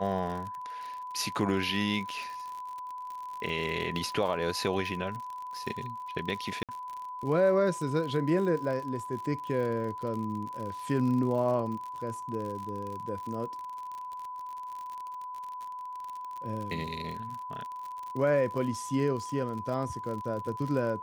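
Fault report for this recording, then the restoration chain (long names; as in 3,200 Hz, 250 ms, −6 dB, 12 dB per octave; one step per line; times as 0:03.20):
surface crackle 55 per second −36 dBFS
whistle 1,000 Hz −37 dBFS
0:06.63–0:06.69: drop-out 57 ms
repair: click removal
notch filter 1,000 Hz, Q 30
repair the gap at 0:06.63, 57 ms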